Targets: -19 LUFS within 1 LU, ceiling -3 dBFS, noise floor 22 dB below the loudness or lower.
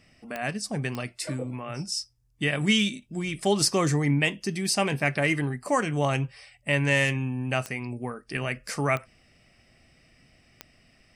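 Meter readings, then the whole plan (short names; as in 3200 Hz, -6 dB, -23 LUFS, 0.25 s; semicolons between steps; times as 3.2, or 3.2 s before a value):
clicks 5; loudness -27.0 LUFS; peak -8.0 dBFS; loudness target -19.0 LUFS
-> de-click; gain +8 dB; limiter -3 dBFS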